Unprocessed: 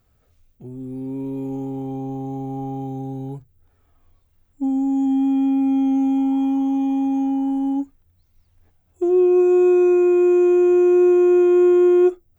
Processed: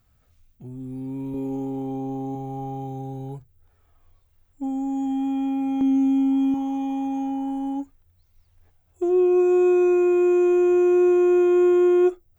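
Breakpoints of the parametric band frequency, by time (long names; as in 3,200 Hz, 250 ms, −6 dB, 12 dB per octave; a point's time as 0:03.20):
parametric band −7.5 dB 1.1 octaves
430 Hz
from 0:01.34 94 Hz
from 0:02.35 230 Hz
from 0:05.81 740 Hz
from 0:06.54 230 Hz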